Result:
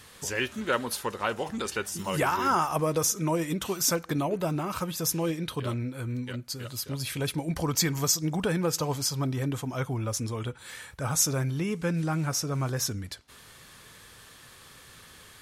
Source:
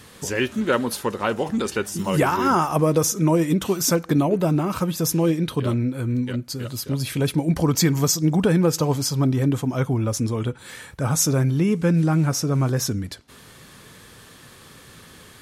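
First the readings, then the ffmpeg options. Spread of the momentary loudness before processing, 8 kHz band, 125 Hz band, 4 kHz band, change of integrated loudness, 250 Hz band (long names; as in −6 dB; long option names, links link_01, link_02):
8 LU, −3.0 dB, −9.0 dB, −3.0 dB, −7.0 dB, −10.5 dB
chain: -af "equalizer=frequency=230:width=0.51:gain=-8,volume=-3dB"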